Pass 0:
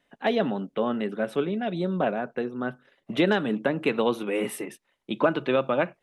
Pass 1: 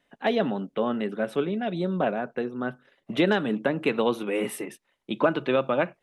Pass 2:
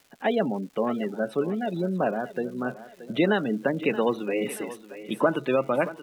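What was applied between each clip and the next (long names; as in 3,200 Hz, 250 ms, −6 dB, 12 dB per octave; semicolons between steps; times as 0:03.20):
no processing that can be heard
gate on every frequency bin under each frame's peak −25 dB strong; surface crackle 390 per second −45 dBFS; feedback echo with a high-pass in the loop 627 ms, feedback 47%, high-pass 210 Hz, level −14 dB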